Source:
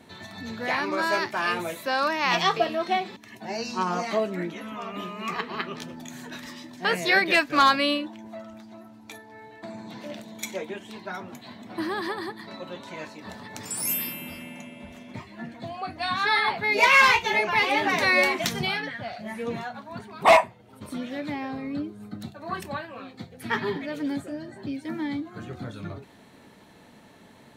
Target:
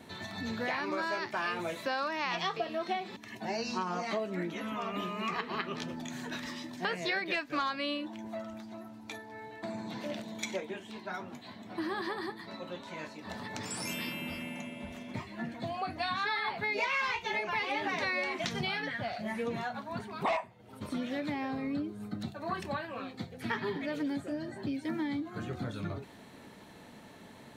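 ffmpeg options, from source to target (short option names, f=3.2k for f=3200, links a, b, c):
-filter_complex "[0:a]acrossover=split=6800[a][b];[b]acompressor=threshold=-59dB:ratio=4:attack=1:release=60[c];[a][c]amix=inputs=2:normalize=0,asettb=1/sr,asplit=3[d][e][f];[d]atrim=end=10.604[g];[e]atrim=start=10.6:end=13.3,asetpts=PTS-STARTPTS,afade=t=in:d=0.004:c=qsin,afade=t=out:st=2.696:d=0.004:c=qsin,flanger=delay=9.7:depth=4.7:regen=-57:speed=1:shape=triangular[h];[f]atrim=start=13.296[i];[g][h]acrossfade=d=0.004:c1=hsin:c2=qsin[j];[j][i]acrossfade=d=0.004:c1=qsin:c2=hsin,acompressor=threshold=-31dB:ratio=5"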